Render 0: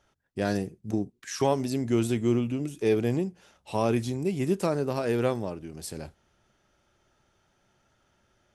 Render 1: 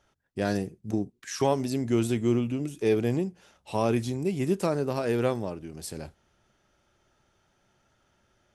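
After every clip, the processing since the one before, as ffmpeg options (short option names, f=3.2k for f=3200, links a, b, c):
-af anull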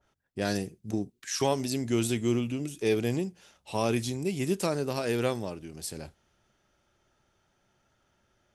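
-af "adynamicequalizer=threshold=0.00501:dfrequency=2100:dqfactor=0.7:tfrequency=2100:tqfactor=0.7:attack=5:release=100:ratio=0.375:range=4:mode=boostabove:tftype=highshelf,volume=-2.5dB"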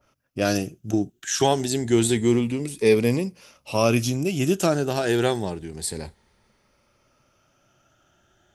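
-af "afftfilt=real='re*pow(10,8/40*sin(2*PI*(0.92*log(max(b,1)*sr/1024/100)/log(2)-(0.28)*(pts-256)/sr)))':imag='im*pow(10,8/40*sin(2*PI*(0.92*log(max(b,1)*sr/1024/100)/log(2)-(0.28)*(pts-256)/sr)))':win_size=1024:overlap=0.75,volume=6.5dB"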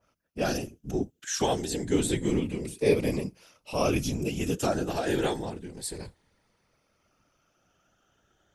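-af "afftfilt=real='hypot(re,im)*cos(2*PI*random(0))':imag='hypot(re,im)*sin(2*PI*random(1))':win_size=512:overlap=0.75"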